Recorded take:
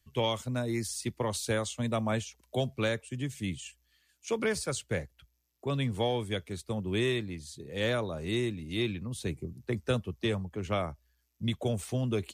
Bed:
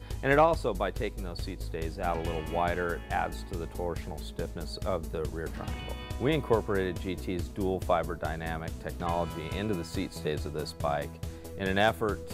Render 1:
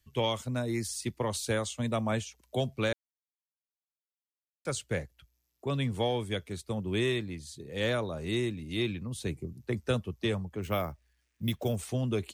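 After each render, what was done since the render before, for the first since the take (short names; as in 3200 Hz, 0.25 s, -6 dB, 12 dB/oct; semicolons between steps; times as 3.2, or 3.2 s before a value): 2.93–4.65 mute; 10.62–11.76 careless resampling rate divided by 3×, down none, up hold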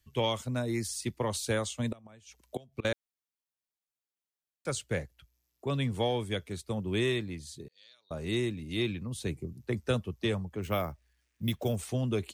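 1.85–2.85 flipped gate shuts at -23 dBFS, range -25 dB; 7.68–8.11 band-pass 4500 Hz, Q 17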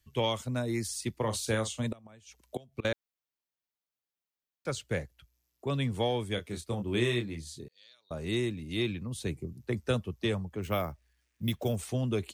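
1.14–1.87 doubler 36 ms -10 dB; 2.86–4.85 bell 9000 Hz -7.5 dB; 6.35–7.64 doubler 25 ms -6 dB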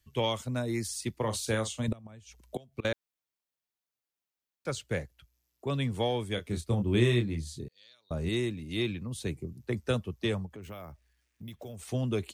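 1.88–2.56 low shelf 190 Hz +11 dB; 6.46–8.29 low shelf 240 Hz +9 dB; 10.46–11.88 compressor 4:1, threshold -42 dBFS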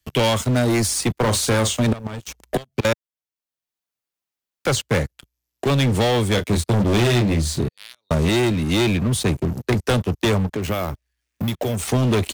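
sample leveller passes 5; three-band squash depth 40%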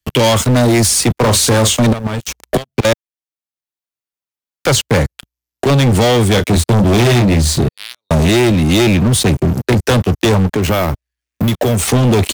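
sample leveller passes 3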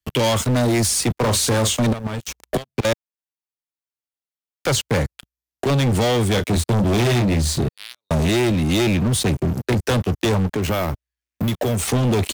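gain -7 dB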